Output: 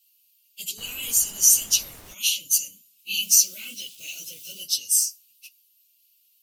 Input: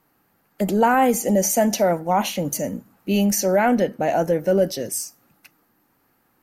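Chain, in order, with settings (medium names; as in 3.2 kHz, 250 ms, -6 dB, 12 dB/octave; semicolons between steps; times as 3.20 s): phase randomisation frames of 50 ms; 3.23–4.63 s: word length cut 8-bit, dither none; elliptic high-pass 2.8 kHz, stop band 40 dB; 0.77–2.13 s: added noise pink -55 dBFS; trim +8 dB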